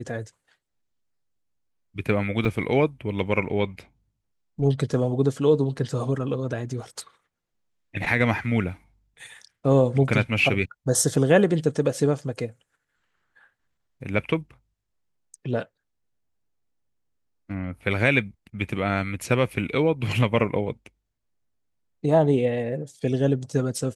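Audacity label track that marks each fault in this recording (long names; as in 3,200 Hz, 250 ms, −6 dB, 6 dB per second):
2.450000	2.450000	drop-out 3.1 ms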